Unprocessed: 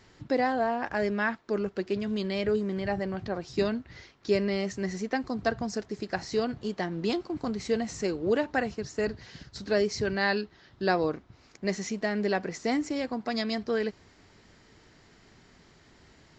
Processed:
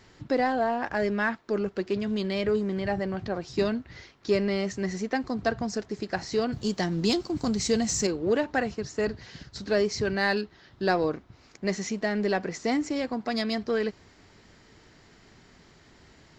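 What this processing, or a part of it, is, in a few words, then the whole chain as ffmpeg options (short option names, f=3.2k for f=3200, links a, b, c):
parallel distortion: -filter_complex "[0:a]asettb=1/sr,asplit=3[a][b][c];[a]atrim=end=6.524[d];[b]atrim=start=6.52:end=8.07,asetpts=PTS-STARTPTS,afade=t=in:d=0.004:c=qsin,afade=t=out:st=1.546:d=0.004:c=qsin,bass=f=250:g=6,treble=f=4k:g=14[e];[c]atrim=start=8.066[f];[d][e]acrossfade=d=0.004:c1=hsin:c2=qsin[g];[g][f]acrossfade=d=0.004:c1=qsin:c2=hsin,asplit=2[h][i];[i]asoftclip=type=hard:threshold=-27dB,volume=-11.5dB[j];[h][j]amix=inputs=2:normalize=0"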